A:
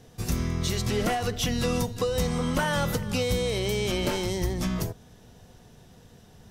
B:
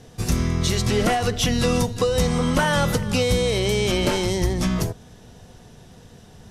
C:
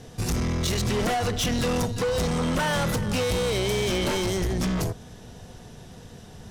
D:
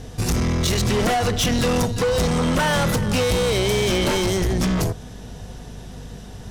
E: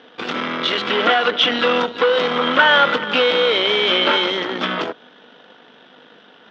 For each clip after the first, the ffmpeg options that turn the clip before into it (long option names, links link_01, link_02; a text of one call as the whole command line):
ffmpeg -i in.wav -af "lowpass=frequency=12000:width=0.5412,lowpass=frequency=12000:width=1.3066,volume=6dB" out.wav
ffmpeg -i in.wav -af "asoftclip=type=tanh:threshold=-24dB,volume=2dB" out.wav
ffmpeg -i in.wav -af "aeval=exprs='val(0)+0.00708*(sin(2*PI*50*n/s)+sin(2*PI*2*50*n/s)/2+sin(2*PI*3*50*n/s)/3+sin(2*PI*4*50*n/s)/4+sin(2*PI*5*50*n/s)/5)':channel_layout=same,volume=5dB" out.wav
ffmpeg -i in.wav -af "aeval=exprs='0.168*(cos(1*acos(clip(val(0)/0.168,-1,1)))-cos(1*PI/2))+0.0376*(cos(3*acos(clip(val(0)/0.168,-1,1)))-cos(3*PI/2))+0.0168*(cos(4*acos(clip(val(0)/0.168,-1,1)))-cos(4*PI/2))+0.0133*(cos(6*acos(clip(val(0)/0.168,-1,1)))-cos(6*PI/2))':channel_layout=same,highpass=frequency=300:width=0.5412,highpass=frequency=300:width=1.3066,equalizer=frequency=380:width_type=q:width=4:gain=-7,equalizer=frequency=710:width_type=q:width=4:gain=-4,equalizer=frequency=1400:width_type=q:width=4:gain=8,equalizer=frequency=3300:width_type=q:width=4:gain=9,lowpass=frequency=3300:width=0.5412,lowpass=frequency=3300:width=1.3066,volume=7.5dB" out.wav